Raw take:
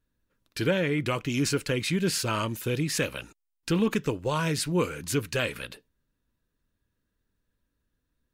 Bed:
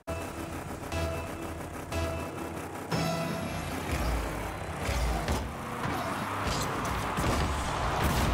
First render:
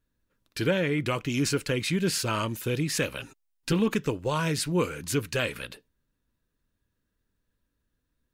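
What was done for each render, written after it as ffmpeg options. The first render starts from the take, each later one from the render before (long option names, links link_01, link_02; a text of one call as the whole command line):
ffmpeg -i in.wav -filter_complex "[0:a]asettb=1/sr,asplit=3[link_01][link_02][link_03];[link_01]atrim=end=3.194[link_04];[link_02]atrim=start=3.19:end=3.73,asetpts=PTS-STARTPTS,afade=type=in:duration=0.004:curve=qsin,afade=type=out:start_time=0.536:duration=0.004:curve=qsin,aecho=1:1:7.5:0.78,atrim=end_sample=23814[link_05];[link_03]atrim=start=3.726[link_06];[link_04][link_05]acrossfade=duration=0.004:curve1=hsin:curve2=qsin[link_07];[link_07][link_06]acrossfade=duration=0.004:curve1=qsin:curve2=hsin" out.wav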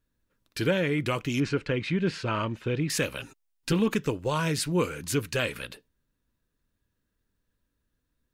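ffmpeg -i in.wav -filter_complex "[0:a]asettb=1/sr,asplit=3[link_01][link_02][link_03];[link_01]atrim=end=1.404[link_04];[link_02]atrim=start=1.4:end=2.9,asetpts=PTS-STARTPTS,afade=type=in:duration=0.004:curve=qsin,afade=type=out:start_time=1.496:duration=0.004:curve=qsin,lowpass=2800[link_05];[link_03]atrim=start=2.896[link_06];[link_04][link_05]acrossfade=duration=0.004:curve1=hsin:curve2=qsin[link_07];[link_07][link_06]acrossfade=duration=0.004:curve1=qsin:curve2=hsin" out.wav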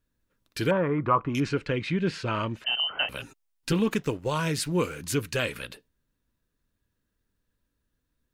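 ffmpeg -i in.wav -filter_complex "[0:a]asettb=1/sr,asplit=3[link_01][link_02][link_03];[link_01]atrim=end=0.714[link_04];[link_02]atrim=start=0.71:end=1.35,asetpts=PTS-STARTPTS,afade=type=in:duration=0.004:curve=qsin,afade=type=out:start_time=0.636:duration=0.004:curve=qsin,lowpass=frequency=1100:width_type=q:width=5.6[link_05];[link_03]atrim=start=1.346[link_06];[link_04][link_05]acrossfade=duration=0.004:curve1=hsin:curve2=qsin[link_07];[link_07][link_06]acrossfade=duration=0.004:curve1=qsin:curve2=hsin,asettb=1/sr,asplit=3[link_08][link_09][link_10];[link_08]atrim=end=2.644[link_11];[link_09]atrim=start=2.64:end=3.09,asetpts=PTS-STARTPTS,afade=type=in:duration=0.004:curve=qsin,afade=type=out:start_time=0.446:duration=0.004:curve=qsin,lowpass=frequency=2700:width_type=q:width=0.5098,lowpass=frequency=2700:width_type=q:width=0.6013,lowpass=frequency=2700:width_type=q:width=0.9,lowpass=frequency=2700:width_type=q:width=2.563,afreqshift=-3200[link_12];[link_10]atrim=start=3.086[link_13];[link_11][link_12]acrossfade=duration=0.004:curve1=hsin:curve2=qsin[link_14];[link_14][link_13]acrossfade=duration=0.004:curve1=qsin:curve2=hsin,asettb=1/sr,asplit=3[link_15][link_16][link_17];[link_15]atrim=end=3.814[link_18];[link_16]atrim=start=3.81:end=5.01,asetpts=PTS-STARTPTS,afade=type=in:duration=0.004:curve=qsin,afade=type=out:start_time=1.196:duration=0.004:curve=qsin,aeval=exprs='sgn(val(0))*max(abs(val(0))-0.00224,0)':channel_layout=same[link_19];[link_17]atrim=start=5.006[link_20];[link_18][link_19]acrossfade=duration=0.004:curve1=hsin:curve2=qsin[link_21];[link_21][link_20]acrossfade=duration=0.004:curve1=qsin:curve2=hsin" out.wav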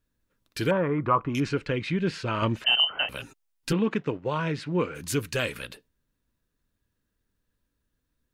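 ffmpeg -i in.wav -filter_complex "[0:a]asettb=1/sr,asplit=3[link_01][link_02][link_03];[link_01]atrim=end=2.424[link_04];[link_02]atrim=start=2.42:end=2.85,asetpts=PTS-STARTPTS,afade=type=in:duration=0.004:curve=qsin,afade=type=out:start_time=0.426:duration=0.004:curve=qsin,acontrast=46[link_05];[link_03]atrim=start=2.846[link_06];[link_04][link_05]acrossfade=duration=0.004:curve1=hsin:curve2=qsin[link_07];[link_07][link_06]acrossfade=duration=0.004:curve1=qsin:curve2=hsin,asplit=3[link_08][link_09][link_10];[link_08]afade=type=out:start_time=3.72:duration=0.02[link_11];[link_09]highpass=110,lowpass=2700,afade=type=in:start_time=3.72:duration=0.02,afade=type=out:start_time=4.94:duration=0.02[link_12];[link_10]afade=type=in:start_time=4.94:duration=0.02[link_13];[link_11][link_12][link_13]amix=inputs=3:normalize=0" out.wav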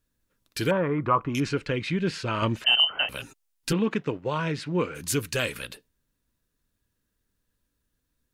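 ffmpeg -i in.wav -af "equalizer=frequency=11000:width=0.33:gain=5" out.wav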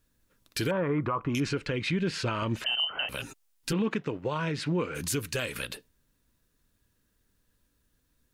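ffmpeg -i in.wav -filter_complex "[0:a]asplit=2[link_01][link_02];[link_02]acompressor=threshold=-33dB:ratio=6,volume=-2dB[link_03];[link_01][link_03]amix=inputs=2:normalize=0,alimiter=limit=-20dB:level=0:latency=1:release=142" out.wav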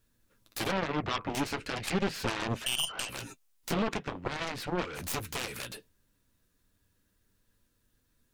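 ffmpeg -i in.wav -af "flanger=delay=8.7:depth=2.1:regen=-39:speed=0.38:shape=sinusoidal,aeval=exprs='0.0891*(cos(1*acos(clip(val(0)/0.0891,-1,1)))-cos(1*PI/2))+0.00891*(cos(4*acos(clip(val(0)/0.0891,-1,1)))-cos(4*PI/2))+0.0316*(cos(7*acos(clip(val(0)/0.0891,-1,1)))-cos(7*PI/2))':channel_layout=same" out.wav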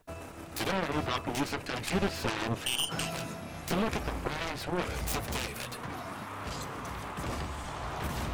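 ffmpeg -i in.wav -i bed.wav -filter_complex "[1:a]volume=-7.5dB[link_01];[0:a][link_01]amix=inputs=2:normalize=0" out.wav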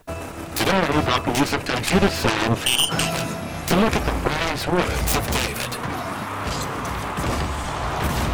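ffmpeg -i in.wav -af "volume=12dB" out.wav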